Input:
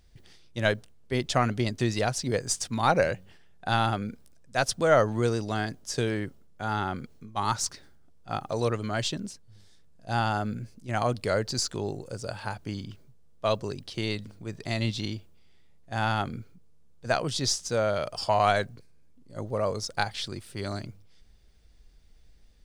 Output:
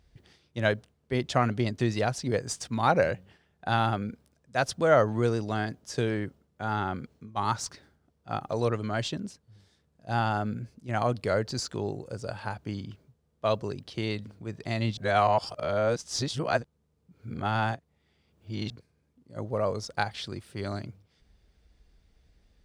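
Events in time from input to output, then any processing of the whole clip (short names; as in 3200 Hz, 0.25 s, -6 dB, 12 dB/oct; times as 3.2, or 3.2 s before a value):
14.97–18.7 reverse
whole clip: HPF 42 Hz; high shelf 4100 Hz -8.5 dB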